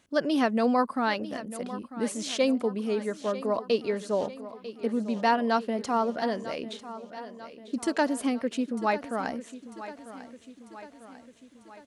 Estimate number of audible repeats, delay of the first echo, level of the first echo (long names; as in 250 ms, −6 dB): 5, 946 ms, −14.5 dB